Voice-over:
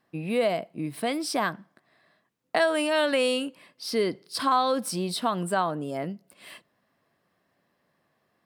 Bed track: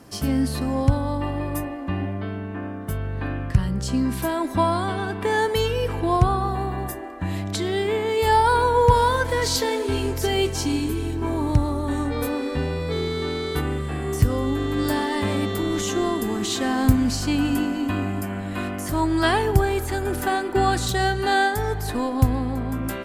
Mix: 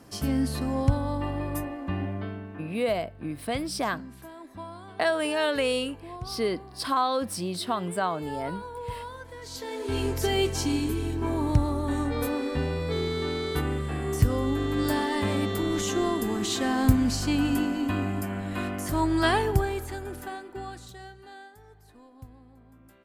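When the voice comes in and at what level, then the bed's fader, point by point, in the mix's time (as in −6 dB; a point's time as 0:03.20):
2.45 s, −2.0 dB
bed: 0:02.22 −4 dB
0:03.08 −20 dB
0:09.42 −20 dB
0:10.00 −3 dB
0:19.37 −3 dB
0:21.46 −28 dB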